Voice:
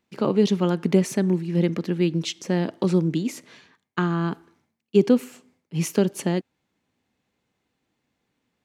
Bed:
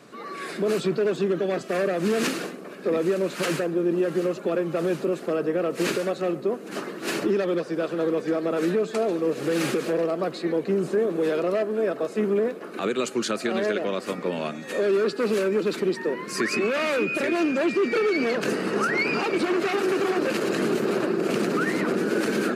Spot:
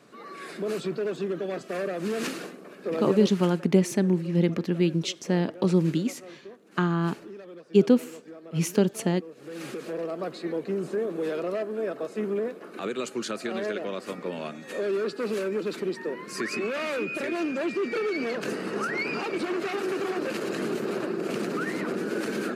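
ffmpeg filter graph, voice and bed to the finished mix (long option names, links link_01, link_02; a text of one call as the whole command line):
ffmpeg -i stem1.wav -i stem2.wav -filter_complex "[0:a]adelay=2800,volume=-1.5dB[link_01];[1:a]volume=8dB,afade=type=out:start_time=3.2:duration=0.31:silence=0.211349,afade=type=in:start_time=9.36:duration=0.91:silence=0.199526[link_02];[link_01][link_02]amix=inputs=2:normalize=0" out.wav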